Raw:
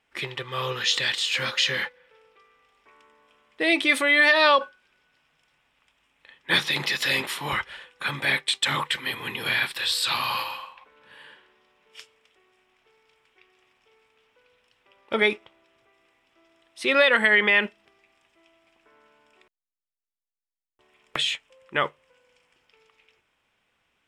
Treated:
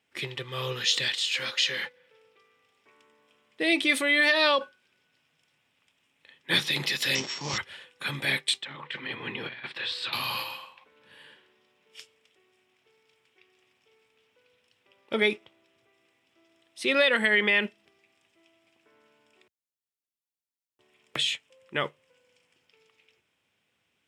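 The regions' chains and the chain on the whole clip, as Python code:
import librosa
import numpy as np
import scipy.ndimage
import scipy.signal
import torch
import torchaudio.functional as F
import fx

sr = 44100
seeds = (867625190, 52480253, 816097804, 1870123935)

y = fx.chain(x, sr, fx.highpass(hz=460.0, slope=6),
    fx.high_shelf(hz=10000.0, db=-6.5), at=(1.08, 1.84))
y = fx.chain(y, sr, fx.sample_sort(block=8),
    fx.brickwall_lowpass(high_hz=8000.0),
    fx.doppler_dist(depth_ms=0.12), at=(7.15, 7.58))
y = fx.chain(y, sr, fx.lowpass(hz=2400.0, slope=12),
    fx.over_compress(threshold_db=-31.0, ratio=-0.5),
    fx.low_shelf(hz=98.0, db=-11.5), at=(8.62, 10.13))
y = scipy.signal.sosfilt(scipy.signal.butter(4, 82.0, 'highpass', fs=sr, output='sos'), y)
y = fx.peak_eq(y, sr, hz=1100.0, db=-7.5, octaves=1.9)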